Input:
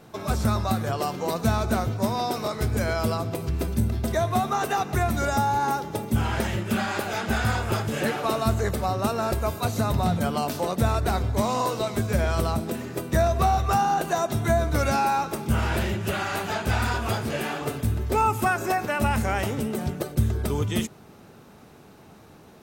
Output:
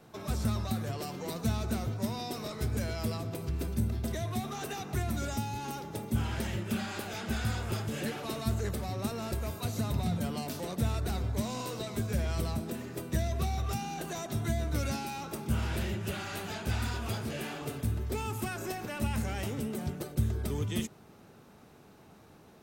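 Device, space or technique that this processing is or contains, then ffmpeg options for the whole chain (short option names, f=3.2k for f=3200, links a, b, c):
one-band saturation: -filter_complex "[0:a]acrossover=split=390|2300[a][b][c];[b]asoftclip=type=tanh:threshold=-35dB[d];[a][d][c]amix=inputs=3:normalize=0,volume=-6.5dB"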